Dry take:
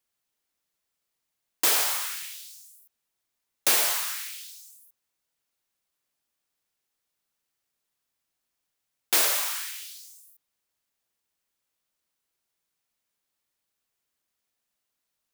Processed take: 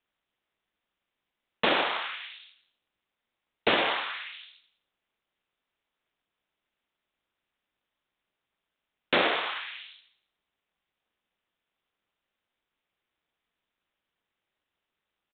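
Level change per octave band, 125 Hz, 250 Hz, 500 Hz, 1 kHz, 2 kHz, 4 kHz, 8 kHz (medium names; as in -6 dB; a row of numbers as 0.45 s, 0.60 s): no reading, +10.5 dB, +8.0 dB, +5.0 dB, +3.5 dB, -0.5 dB, under -40 dB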